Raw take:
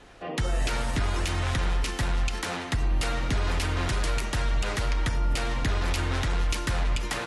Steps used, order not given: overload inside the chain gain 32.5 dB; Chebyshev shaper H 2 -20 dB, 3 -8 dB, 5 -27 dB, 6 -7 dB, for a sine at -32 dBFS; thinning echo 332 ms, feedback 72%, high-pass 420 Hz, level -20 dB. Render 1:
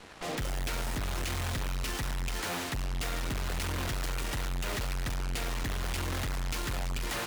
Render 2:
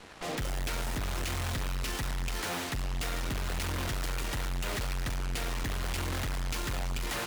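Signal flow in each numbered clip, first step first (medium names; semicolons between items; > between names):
thinning echo > overload inside the chain > Chebyshev shaper; overload inside the chain > Chebyshev shaper > thinning echo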